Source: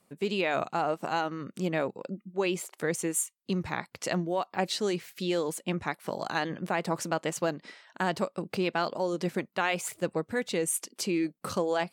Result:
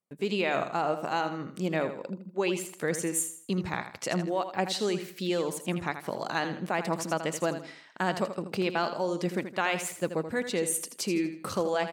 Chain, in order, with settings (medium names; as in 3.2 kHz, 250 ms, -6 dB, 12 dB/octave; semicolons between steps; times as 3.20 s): gate -56 dBFS, range -23 dB; on a send: feedback delay 81 ms, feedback 34%, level -10 dB